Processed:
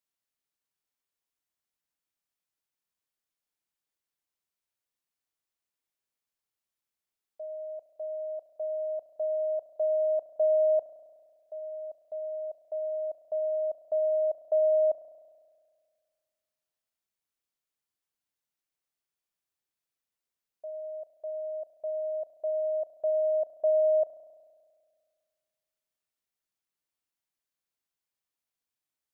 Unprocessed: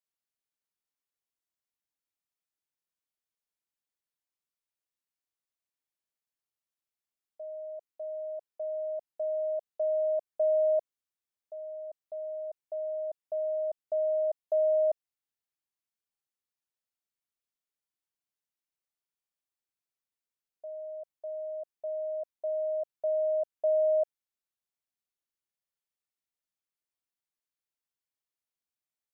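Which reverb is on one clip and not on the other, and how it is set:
spring reverb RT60 1.9 s, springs 33 ms, chirp 35 ms, DRR 11.5 dB
level +2 dB

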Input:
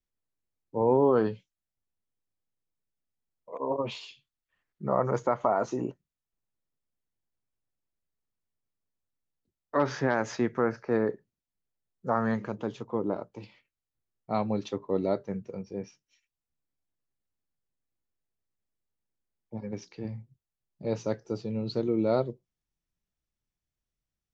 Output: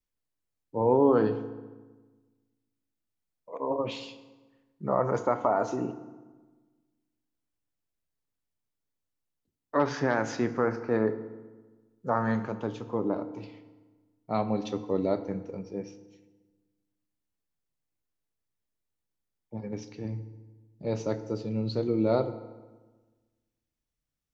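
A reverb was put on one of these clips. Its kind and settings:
feedback delay network reverb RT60 1.3 s, low-frequency decay 1.25×, high-frequency decay 0.7×, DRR 9.5 dB

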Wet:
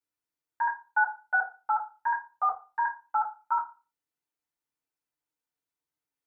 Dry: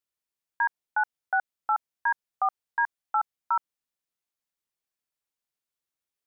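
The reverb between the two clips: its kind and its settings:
feedback delay network reverb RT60 0.31 s, low-frequency decay 1×, high-frequency decay 0.4×, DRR −7 dB
level −8 dB

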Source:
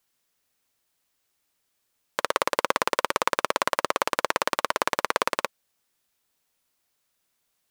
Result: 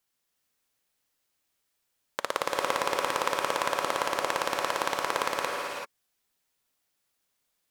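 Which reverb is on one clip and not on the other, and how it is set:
reverb whose tail is shaped and stops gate 410 ms rising, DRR 1 dB
level −5 dB

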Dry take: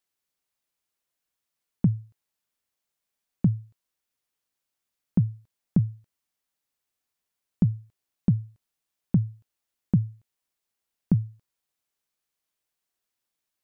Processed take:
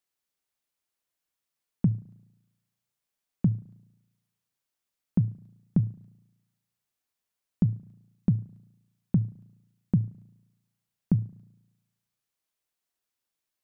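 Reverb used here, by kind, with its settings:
spring reverb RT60 1 s, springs 35 ms, chirp 80 ms, DRR 18.5 dB
level −2 dB

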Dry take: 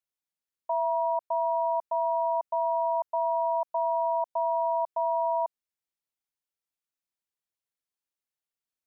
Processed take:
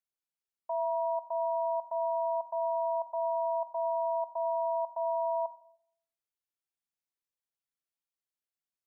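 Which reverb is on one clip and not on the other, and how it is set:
rectangular room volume 1,000 cubic metres, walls furnished, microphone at 0.78 metres
level −6 dB

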